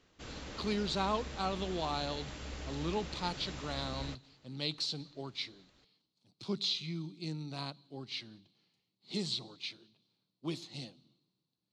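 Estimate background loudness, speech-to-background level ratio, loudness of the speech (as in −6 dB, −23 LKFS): −45.0 LKFS, 7.0 dB, −38.0 LKFS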